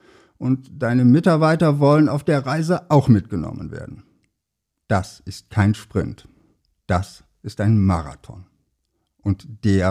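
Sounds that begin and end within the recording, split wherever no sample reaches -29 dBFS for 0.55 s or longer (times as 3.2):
4.9–6.18
6.89–8.34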